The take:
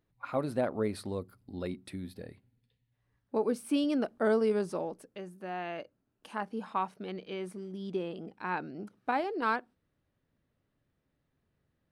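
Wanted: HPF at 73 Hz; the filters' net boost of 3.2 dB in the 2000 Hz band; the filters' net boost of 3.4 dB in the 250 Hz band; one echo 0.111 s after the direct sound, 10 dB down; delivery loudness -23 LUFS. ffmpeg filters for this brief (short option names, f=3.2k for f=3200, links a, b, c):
-af "highpass=73,equalizer=f=250:t=o:g=4,equalizer=f=2k:t=o:g=4.5,aecho=1:1:111:0.316,volume=9dB"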